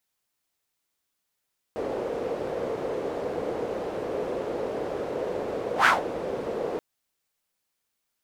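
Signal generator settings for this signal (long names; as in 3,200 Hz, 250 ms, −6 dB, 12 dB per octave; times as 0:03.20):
pass-by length 5.03 s, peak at 0:04.10, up 0.11 s, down 0.18 s, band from 480 Hz, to 1,500 Hz, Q 3.4, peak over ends 13 dB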